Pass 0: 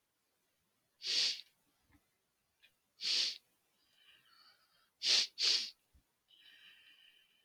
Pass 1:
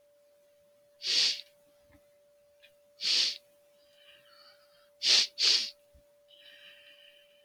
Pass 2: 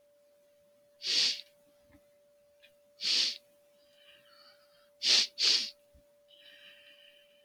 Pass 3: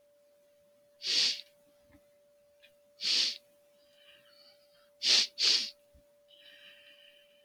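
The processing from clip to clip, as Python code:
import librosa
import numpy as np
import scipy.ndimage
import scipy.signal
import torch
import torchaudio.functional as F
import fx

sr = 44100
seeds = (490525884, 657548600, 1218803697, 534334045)

y1 = x + 10.0 ** (-69.0 / 20.0) * np.sin(2.0 * np.pi * 580.0 * np.arange(len(x)) / sr)
y1 = y1 * 10.0 ** (7.0 / 20.0)
y2 = fx.peak_eq(y1, sr, hz=240.0, db=6.0, octaves=0.62)
y2 = y2 * 10.0 ** (-1.5 / 20.0)
y3 = fx.spec_box(y2, sr, start_s=4.31, length_s=0.43, low_hz=850.0, high_hz=1900.0, gain_db=-10)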